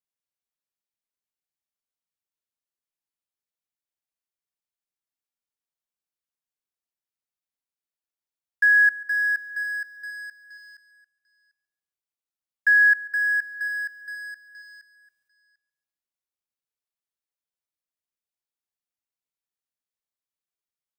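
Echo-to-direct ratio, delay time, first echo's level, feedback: −16.5 dB, 140 ms, −20.0 dB, repeats not evenly spaced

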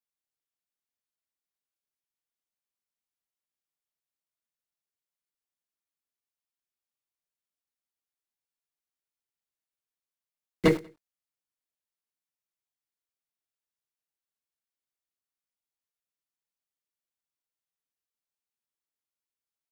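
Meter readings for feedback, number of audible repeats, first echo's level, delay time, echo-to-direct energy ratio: 36%, 2, −22.5 dB, 94 ms, −22.0 dB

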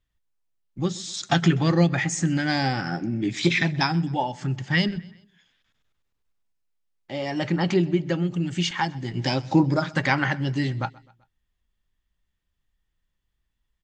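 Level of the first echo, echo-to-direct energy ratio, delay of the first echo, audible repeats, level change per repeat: −23.0 dB, −22.0 dB, 128 ms, 2, −6.0 dB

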